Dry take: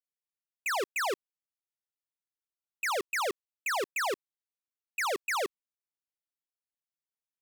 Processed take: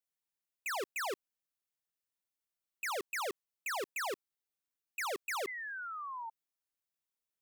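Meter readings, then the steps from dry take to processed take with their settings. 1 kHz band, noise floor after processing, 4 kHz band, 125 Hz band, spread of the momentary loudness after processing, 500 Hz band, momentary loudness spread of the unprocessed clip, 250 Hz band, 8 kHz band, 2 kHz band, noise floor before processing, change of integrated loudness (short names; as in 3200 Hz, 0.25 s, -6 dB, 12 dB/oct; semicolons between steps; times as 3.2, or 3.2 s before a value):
-5.5 dB, under -85 dBFS, -6.0 dB, n/a, 8 LU, -6.5 dB, 7 LU, -6.5 dB, -5.5 dB, -5.5 dB, under -85 dBFS, -6.5 dB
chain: high shelf 11000 Hz +5 dB; limiter -33.5 dBFS, peak gain reduction 6.5 dB; painted sound fall, 5.47–6.3, 880–2100 Hz -42 dBFS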